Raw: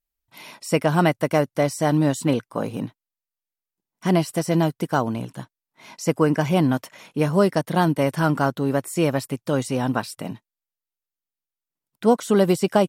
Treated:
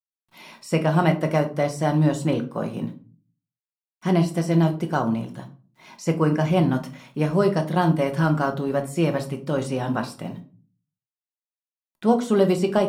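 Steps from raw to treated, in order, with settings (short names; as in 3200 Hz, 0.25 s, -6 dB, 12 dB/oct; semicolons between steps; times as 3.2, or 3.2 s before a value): high shelf 8600 Hz -9.5 dB; bit-crush 11-bit; shoebox room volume 240 m³, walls furnished, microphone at 1 m; gain -3 dB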